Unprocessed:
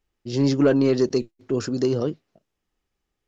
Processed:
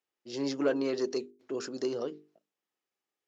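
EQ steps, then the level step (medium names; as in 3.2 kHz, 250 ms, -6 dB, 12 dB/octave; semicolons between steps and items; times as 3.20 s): high-pass 340 Hz 12 dB/octave; hum notches 50/100/150/200/250/300/350/400/450 Hz; -7.0 dB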